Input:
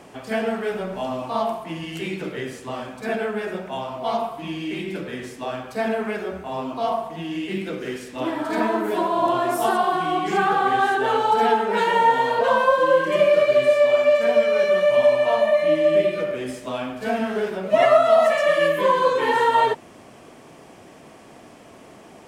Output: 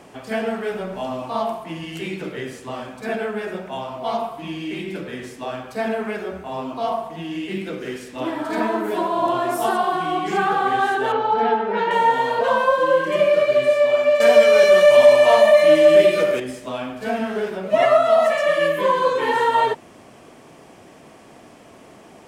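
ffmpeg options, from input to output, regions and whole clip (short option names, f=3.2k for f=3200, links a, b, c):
-filter_complex "[0:a]asettb=1/sr,asplit=3[a][b][c];[a]atrim=end=11.124[d];[b]atrim=start=11.12:end=11.91,asetpts=PTS-STARTPTS,afade=t=in:d=0.004:c=qsin,afade=t=out:st=0.786:d=0.004:c=qsin,lowpass=f=6.2k:w=0.5412,lowpass=f=6.2k:w=1.3066,aemphasis=mode=reproduction:type=75kf[e];[c]atrim=start=11.906[f];[d][e]acrossfade=d=0.004:c1=hsin:c2=qsin[g];[g][f]acrossfade=d=0.004:c1=qsin:c2=hsin,asettb=1/sr,asplit=3[h][i][j];[h]atrim=end=14.204[k];[i]atrim=start=14.2:end=16.4,asetpts=PTS-STARTPTS,afade=t=in:d=0.004:c=qsin,afade=t=out:st=2.196:d=0.004:c=qsin,bass=f=250:g=-6,treble=f=4k:g=8,acontrast=85[l];[j]atrim=start=16.396[m];[k][l]acrossfade=d=0.004:c1=hsin:c2=qsin[n];[n][m]acrossfade=d=0.004:c1=qsin:c2=hsin"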